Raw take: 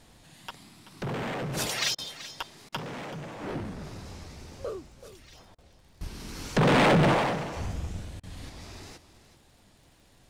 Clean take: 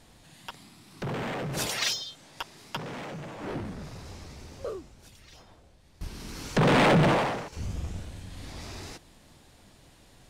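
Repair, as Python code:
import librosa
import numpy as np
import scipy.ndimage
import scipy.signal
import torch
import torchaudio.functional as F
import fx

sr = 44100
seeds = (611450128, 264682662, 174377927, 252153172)

y = fx.fix_declick_ar(x, sr, threshold=6.5)
y = fx.fix_interpolate(y, sr, at_s=(1.95, 2.69, 5.55, 8.2), length_ms=32.0)
y = fx.fix_echo_inverse(y, sr, delay_ms=381, level_db=-14.5)
y = fx.fix_level(y, sr, at_s=8.49, step_db=4.0)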